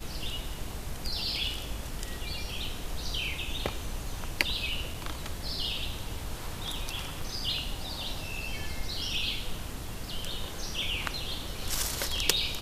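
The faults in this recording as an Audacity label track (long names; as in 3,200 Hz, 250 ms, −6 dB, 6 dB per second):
4.940000	4.940000	drop-out 3.4 ms
7.210000	7.210000	drop-out 3.8 ms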